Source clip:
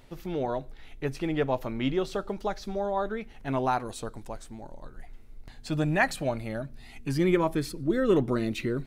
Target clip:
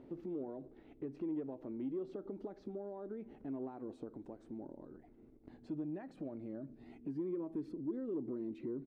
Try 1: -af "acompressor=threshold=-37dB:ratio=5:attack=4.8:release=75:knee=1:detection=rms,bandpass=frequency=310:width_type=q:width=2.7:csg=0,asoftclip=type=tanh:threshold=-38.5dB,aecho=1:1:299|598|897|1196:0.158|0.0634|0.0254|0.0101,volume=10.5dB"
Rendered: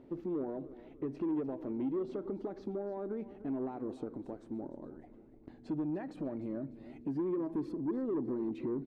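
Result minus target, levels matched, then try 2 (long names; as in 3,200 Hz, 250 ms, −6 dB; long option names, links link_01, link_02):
echo-to-direct +11 dB; downward compressor: peak gain reduction −7 dB
-af "acompressor=threshold=-45.5dB:ratio=5:attack=4.8:release=75:knee=1:detection=rms,bandpass=frequency=310:width_type=q:width=2.7:csg=0,asoftclip=type=tanh:threshold=-38.5dB,aecho=1:1:299|598:0.0447|0.0179,volume=10.5dB"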